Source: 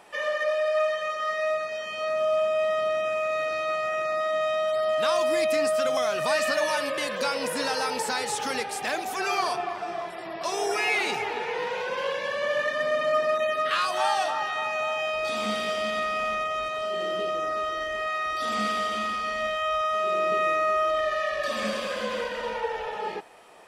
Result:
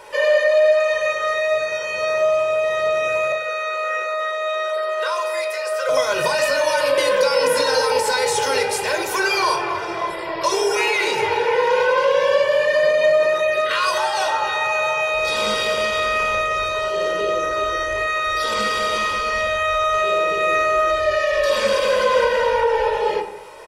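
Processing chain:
mains-hum notches 60/120/180/240/300/360/420/480 Hz
comb filter 2.1 ms, depth 73%
brickwall limiter −20 dBFS, peak gain reduction 8.5 dB
0:03.32–0:05.89: Chebyshev high-pass with heavy ripple 370 Hz, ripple 6 dB
convolution reverb RT60 0.75 s, pre-delay 19 ms, DRR 4.5 dB
level +7 dB

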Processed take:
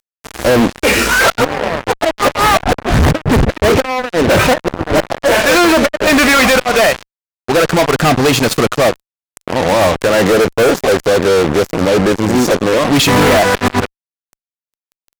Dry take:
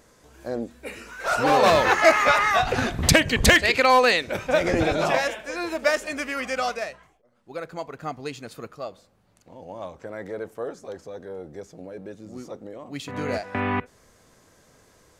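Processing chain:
treble cut that deepens with the level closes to 670 Hz, closed at −18.5 dBFS
gate with flip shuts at −15 dBFS, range −26 dB
fuzz pedal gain 47 dB, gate −45 dBFS
level +5.5 dB

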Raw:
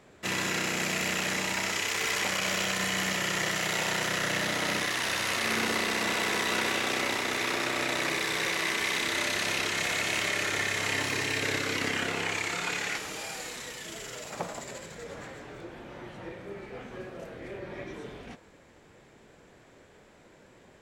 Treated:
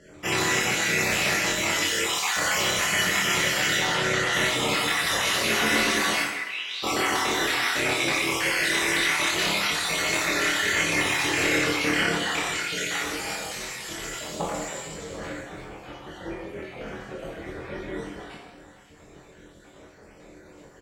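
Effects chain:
time-frequency cells dropped at random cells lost 44%
asymmetric clip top −24 dBFS
0:03.77–0:04.33: high-frequency loss of the air 53 metres
0:06.21–0:06.82: resonant band-pass 1,400 Hz → 4,400 Hz, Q 5.3
double-tracking delay 24 ms −3.5 dB
dense smooth reverb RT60 0.89 s, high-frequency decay 0.95×, DRR −1.5 dB
level +3 dB

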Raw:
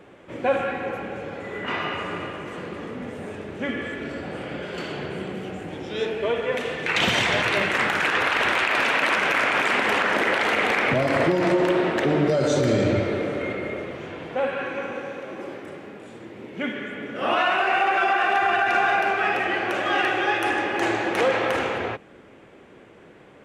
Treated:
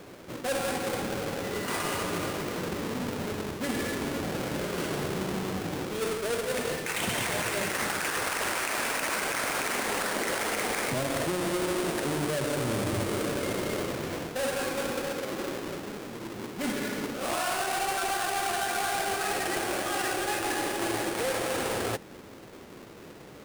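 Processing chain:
each half-wave held at its own peak
dynamic equaliser 9,100 Hz, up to +7 dB, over −44 dBFS, Q 2.8
reversed playback
downward compressor, threshold −26 dBFS, peak gain reduction 12 dB
reversed playback
level −2.5 dB

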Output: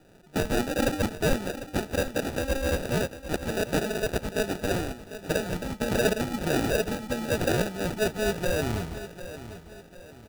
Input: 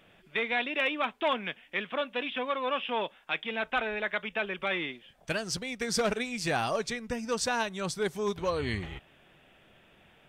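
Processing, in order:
decimation without filtering 41×
repeating echo 749 ms, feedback 39%, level −13 dB
level +4 dB

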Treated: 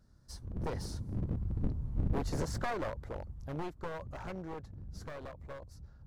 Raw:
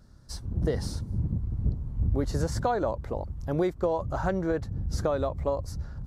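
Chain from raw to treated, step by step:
wavefolder on the positive side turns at −27.5 dBFS
source passing by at 0:01.80, 6 m/s, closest 5.3 metres
level −3 dB

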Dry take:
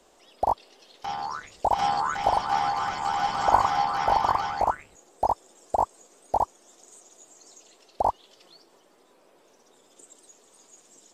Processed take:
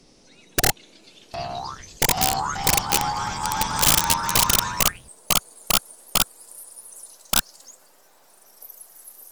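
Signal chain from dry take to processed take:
gliding playback speed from 71% → 168%
wrap-around overflow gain 16.5 dB
bass and treble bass +12 dB, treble +11 dB

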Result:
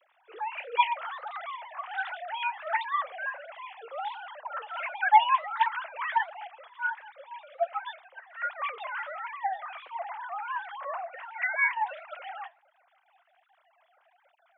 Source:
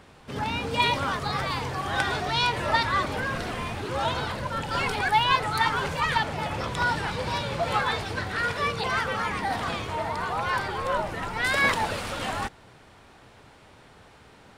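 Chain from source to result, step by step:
three sine waves on the formant tracks
Butterworth high-pass 270 Hz 96 dB per octave
flanger 1.4 Hz, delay 1.3 ms, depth 7.8 ms, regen +78%
0:06.47–0:08.50: expander for the loud parts 1.5 to 1, over −38 dBFS

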